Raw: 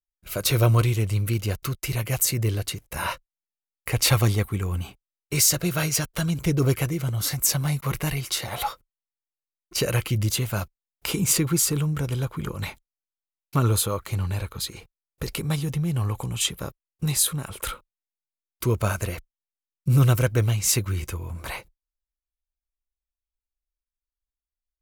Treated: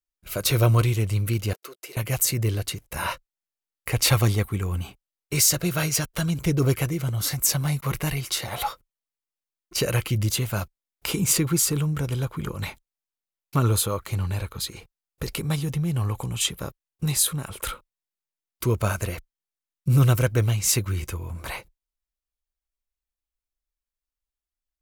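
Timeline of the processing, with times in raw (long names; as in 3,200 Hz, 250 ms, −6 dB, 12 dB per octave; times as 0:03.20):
0:01.53–0:01.97: four-pole ladder high-pass 360 Hz, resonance 45%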